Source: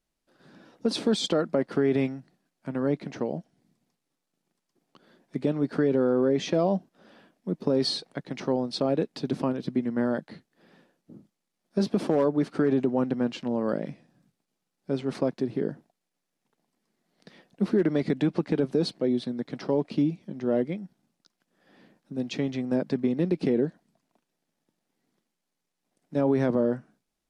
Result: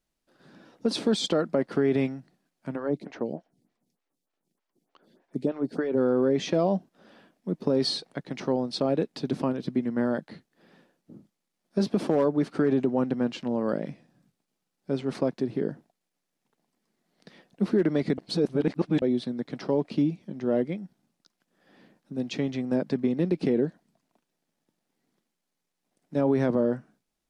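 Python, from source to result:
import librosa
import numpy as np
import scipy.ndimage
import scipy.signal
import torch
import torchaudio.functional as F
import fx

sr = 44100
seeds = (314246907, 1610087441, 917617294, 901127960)

y = fx.stagger_phaser(x, sr, hz=3.3, at=(2.75, 5.96), fade=0.02)
y = fx.edit(y, sr, fx.reverse_span(start_s=18.18, length_s=0.84), tone=tone)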